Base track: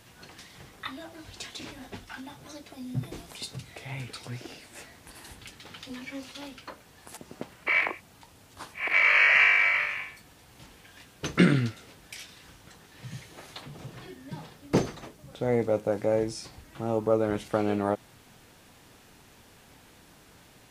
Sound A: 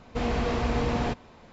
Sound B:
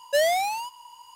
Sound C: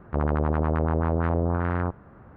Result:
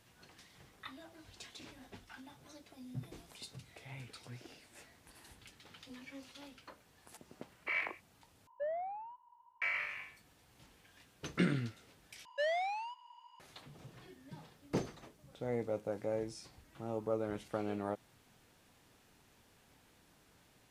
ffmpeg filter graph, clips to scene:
ffmpeg -i bed.wav -i cue0.wav -i cue1.wav -filter_complex "[2:a]asplit=2[link_01][link_02];[0:a]volume=-11.5dB[link_03];[link_01]lowpass=frequency=1400:width=0.5412,lowpass=frequency=1400:width=1.3066[link_04];[link_02]highpass=640,lowpass=2700[link_05];[link_03]asplit=3[link_06][link_07][link_08];[link_06]atrim=end=8.474[link_09];[link_04]atrim=end=1.15,asetpts=PTS-STARTPTS,volume=-16dB[link_10];[link_07]atrim=start=9.616:end=12.254[link_11];[link_05]atrim=end=1.15,asetpts=PTS-STARTPTS,volume=-9.5dB[link_12];[link_08]atrim=start=13.396[link_13];[link_09][link_10]acrossfade=duration=0.004:curve1=hsin:curve2=hsin[link_14];[link_14][link_11]acrossfade=duration=0.004:curve1=hsin:curve2=hsin[link_15];[link_15][link_12]acrossfade=duration=0.004:curve1=hsin:curve2=hsin[link_16];[link_16][link_13]acrossfade=duration=0.004:curve1=hsin:curve2=hsin" out.wav

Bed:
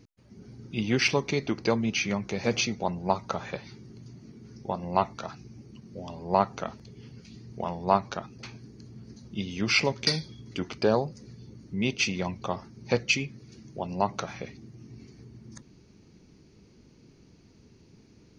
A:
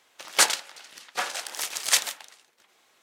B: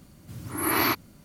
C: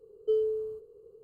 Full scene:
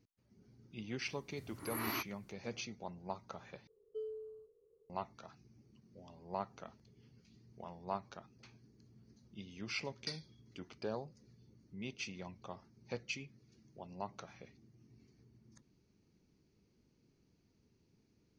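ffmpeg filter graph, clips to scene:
ffmpeg -i bed.wav -i cue0.wav -i cue1.wav -i cue2.wav -filter_complex "[0:a]volume=-17dB,asplit=2[link_01][link_02];[link_01]atrim=end=3.674[link_03];[3:a]atrim=end=1.23,asetpts=PTS-STARTPTS,volume=-16.5dB[link_04];[link_02]atrim=start=4.896[link_05];[2:a]atrim=end=1.24,asetpts=PTS-STARTPTS,volume=-16dB,afade=type=in:duration=0.004:curve=hsin,afade=type=out:start_time=1.236:duration=0.004:curve=hsin,adelay=1080[link_06];[link_03][link_04]acrossfade=duration=0.004:curve1=hsin:curve2=hsin[link_07];[link_07][link_05]acrossfade=duration=0.004:curve1=hsin:curve2=hsin[link_08];[link_08][link_06]amix=inputs=2:normalize=0" out.wav

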